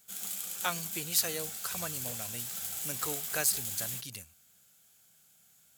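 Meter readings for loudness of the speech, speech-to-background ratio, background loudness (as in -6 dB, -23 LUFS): -34.5 LUFS, 1.0 dB, -35.5 LUFS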